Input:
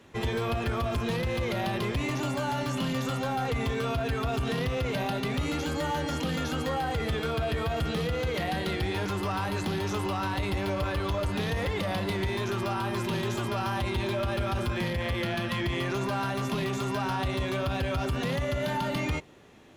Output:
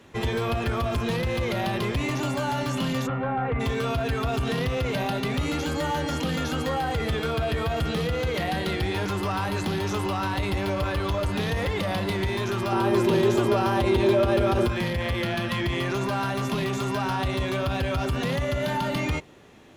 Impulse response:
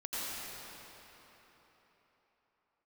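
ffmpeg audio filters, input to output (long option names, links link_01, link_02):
-filter_complex "[0:a]asplit=3[link_01][link_02][link_03];[link_01]afade=type=out:start_time=3.06:duration=0.02[link_04];[link_02]lowpass=frequency=2200:width=0.5412,lowpass=frequency=2200:width=1.3066,afade=type=in:start_time=3.06:duration=0.02,afade=type=out:start_time=3.59:duration=0.02[link_05];[link_03]afade=type=in:start_time=3.59:duration=0.02[link_06];[link_04][link_05][link_06]amix=inputs=3:normalize=0,asettb=1/sr,asplit=3[link_07][link_08][link_09];[link_07]atrim=end=12.724[link_10];[link_08]atrim=start=12.72:end=14.68,asetpts=PTS-STARTPTS,afade=type=in:duration=0.004:curve=qsin,afade=type=out:start_time=1.956:duration=0.004:curve=qsin,equalizer=frequency=420:width=1:gain=10.5[link_11];[link_09]atrim=start=14.676[link_12];[link_10][link_11]acrossfade=duration=0.004:curve1=hsin:curve2=qsin[link_13];[link_13][link_12]acrossfade=duration=0.004:curve1=qsin:curve2=hsin,volume=3dB"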